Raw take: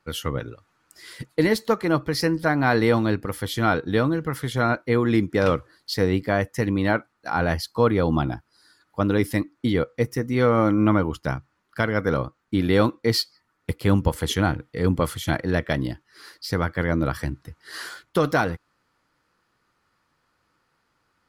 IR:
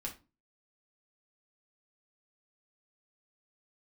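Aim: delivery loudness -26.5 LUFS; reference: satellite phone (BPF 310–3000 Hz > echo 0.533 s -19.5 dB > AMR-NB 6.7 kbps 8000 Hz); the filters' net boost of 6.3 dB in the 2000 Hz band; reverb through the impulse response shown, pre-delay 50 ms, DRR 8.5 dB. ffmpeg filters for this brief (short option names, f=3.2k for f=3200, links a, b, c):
-filter_complex "[0:a]equalizer=f=2k:t=o:g=9,asplit=2[a][b];[1:a]atrim=start_sample=2205,adelay=50[c];[b][c]afir=irnorm=-1:irlink=0,volume=-8dB[d];[a][d]amix=inputs=2:normalize=0,highpass=310,lowpass=3k,aecho=1:1:533:0.106,volume=-2.5dB" -ar 8000 -c:a libopencore_amrnb -b:a 6700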